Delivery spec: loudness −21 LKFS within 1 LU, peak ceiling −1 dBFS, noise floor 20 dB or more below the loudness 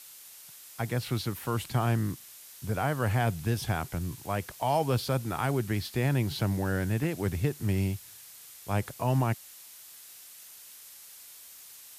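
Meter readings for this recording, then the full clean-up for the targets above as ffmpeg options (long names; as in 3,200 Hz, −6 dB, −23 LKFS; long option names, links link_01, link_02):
background noise floor −50 dBFS; target noise floor −51 dBFS; integrated loudness −30.5 LKFS; sample peak −16.0 dBFS; target loudness −21.0 LKFS
→ -af "afftdn=noise_reduction=6:noise_floor=-50"
-af "volume=9.5dB"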